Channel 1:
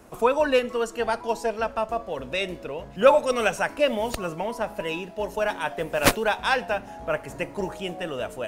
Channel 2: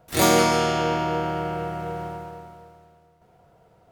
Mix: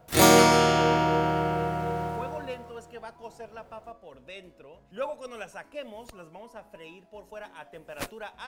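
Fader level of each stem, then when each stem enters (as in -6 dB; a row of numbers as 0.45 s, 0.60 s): -16.5 dB, +1.0 dB; 1.95 s, 0.00 s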